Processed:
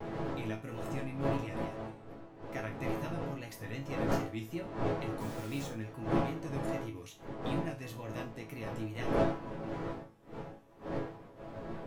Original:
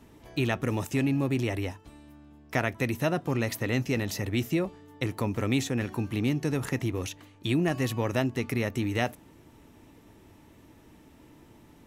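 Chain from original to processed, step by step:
wind on the microphone 550 Hz −25 dBFS
tape wow and flutter 97 cents
0:05.20–0:05.70: bit-depth reduction 6 bits, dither none
resonators tuned to a chord A2 major, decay 0.3 s

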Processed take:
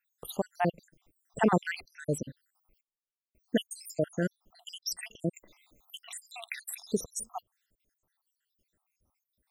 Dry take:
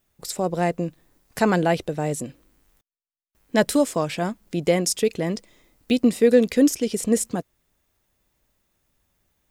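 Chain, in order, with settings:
time-frequency cells dropped at random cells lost 81%
0:05.33–0:06.10: multiband upward and downward compressor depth 40%
level −2 dB

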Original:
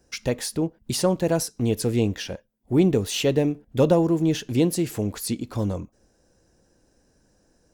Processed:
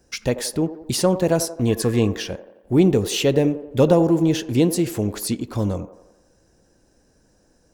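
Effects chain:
0:01.67–0:02.12: hollow resonant body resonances 1,100/1,700 Hz, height 18 dB
delay with a band-pass on its return 87 ms, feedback 54%, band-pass 650 Hz, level −11 dB
level +3 dB

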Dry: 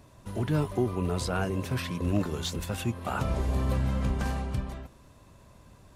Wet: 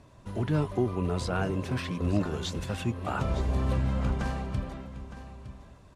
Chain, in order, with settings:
low-pass filter 9,800 Hz 12 dB per octave
high-shelf EQ 5,300 Hz −5.5 dB
on a send: single-tap delay 912 ms −13.5 dB

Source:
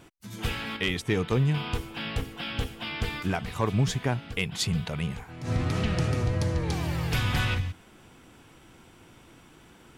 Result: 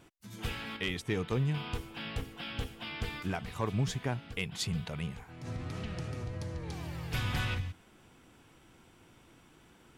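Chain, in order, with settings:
0:05.09–0:07.14: downward compressor 2 to 1, threshold −33 dBFS, peak gain reduction 6.5 dB
level −6.5 dB

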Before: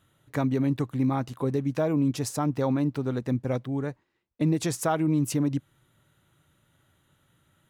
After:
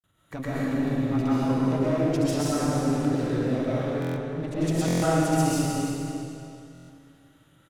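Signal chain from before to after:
in parallel at −2.5 dB: brickwall limiter −25 dBFS, peak gain reduction 11.5 dB
on the sum: granular cloud, pitch spread up and down by 0 semitones
asymmetric clip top −25.5 dBFS
single-tap delay 315 ms −10.5 dB
convolution reverb RT60 2.6 s, pre-delay 90 ms, DRR −9 dB
buffer that repeats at 0:04.00/0:04.86/0:06.73, samples 1,024, times 6
level −7.5 dB

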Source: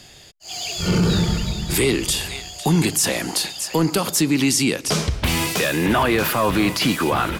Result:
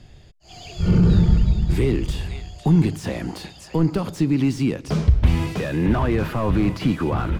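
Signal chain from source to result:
RIAA equalisation playback
slew-rate limiting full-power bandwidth 200 Hz
level −7 dB

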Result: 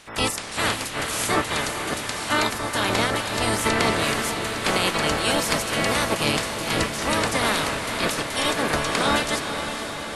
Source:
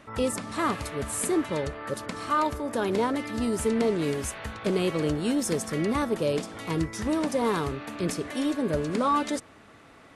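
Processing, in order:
ceiling on every frequency bin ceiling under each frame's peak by 24 dB
feedback delay with all-pass diffusion 484 ms, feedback 67%, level −7.5 dB
level +3 dB

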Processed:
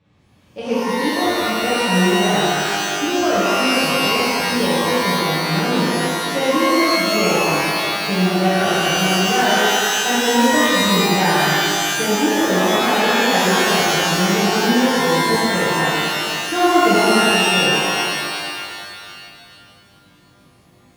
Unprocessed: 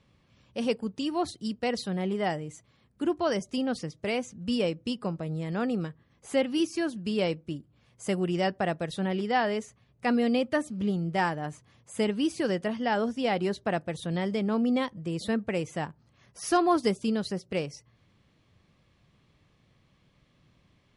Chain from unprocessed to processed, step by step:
high-pass filter 41 Hz
high-shelf EQ 5,000 Hz −11.5 dB
reverb with rising layers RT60 2.3 s, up +12 semitones, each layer −2 dB, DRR −10.5 dB
level −1 dB

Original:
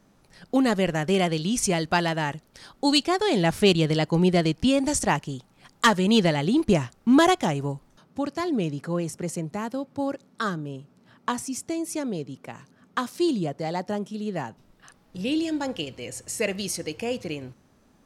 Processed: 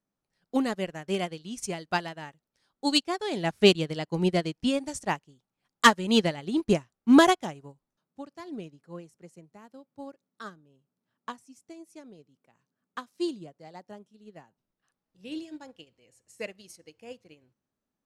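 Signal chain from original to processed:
low-shelf EQ 120 Hz −5 dB
expander for the loud parts 2.5 to 1, over −34 dBFS
level +3 dB

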